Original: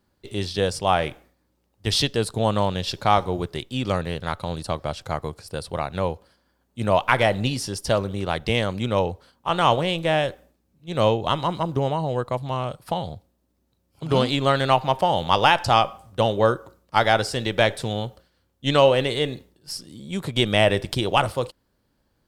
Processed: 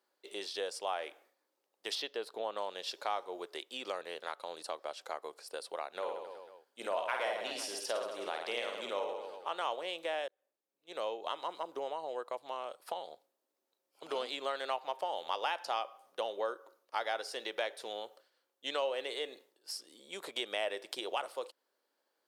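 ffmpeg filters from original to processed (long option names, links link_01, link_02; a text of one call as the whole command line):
ffmpeg -i in.wav -filter_complex "[0:a]asettb=1/sr,asplit=3[link_01][link_02][link_03];[link_01]atrim=end=1.954[link_04];[link_02]atrim=start=1.95:end=2.57,asetpts=PTS-STARTPTS,afade=type=in:duration=0.004:curve=qsin,afade=type=out:start_time=0.616:duration=0.004:curve=qsin,equalizer=frequency=8400:width=0.98:gain=-14[link_05];[link_03]atrim=start=2.566[link_06];[link_04][link_05]acrossfade=duration=0.004:curve1=hsin:curve2=qsin[link_07];[link_07][link_06]acrossfade=duration=0.004:curve1=qsin:curve2=hsin,asettb=1/sr,asplit=3[link_08][link_09][link_10];[link_08]atrim=end=5.914[link_11];[link_09]atrim=start=5.91:end=9.52,asetpts=PTS-STARTPTS,afade=type=in:duration=0.004:curve=qsin,afade=type=out:start_time=3.606:duration=0.004:curve=qsin,aecho=1:1:50|110|182|268.4|372.1|496.5:0.631|0.398|0.251|0.158|0.1|0.0631,atrim=end_sample=159201[link_12];[link_10]atrim=start=9.516[link_13];[link_11][link_12]acrossfade=duration=0.004:curve1=hsin:curve2=qsin[link_14];[link_14][link_13]acrossfade=duration=0.004:curve1=qsin:curve2=hsin,asettb=1/sr,asplit=3[link_15][link_16][link_17];[link_15]atrim=end=15.454[link_18];[link_16]atrim=start=15.45:end=18.02,asetpts=PTS-STARTPTS,afade=type=in:duration=0.004:curve=qsin,afade=type=out:start_time=2.566:duration=0.004:curve=qsin,bandreject=frequency=7700:width=7.2[link_19];[link_17]atrim=start=18.016[link_20];[link_18][link_19]acrossfade=duration=0.004:curve1=hsin:curve2=qsin[link_21];[link_21][link_20]acrossfade=duration=0.004:curve1=qsin:curve2=hsin,asplit=2[link_22][link_23];[link_22]atrim=end=10.28,asetpts=PTS-STARTPTS,afade=type=out:start_time=10.276:duration=0.004:curve=hsin[link_24];[link_23]atrim=start=10.28,asetpts=PTS-STARTPTS,afade=type=in:duration=1.08[link_25];[link_24][link_25]concat=n=2:v=0:a=1,highpass=frequency=400:width=0.5412,highpass=frequency=400:width=1.3066,acompressor=threshold=-32dB:ratio=2,volume=-7dB" out.wav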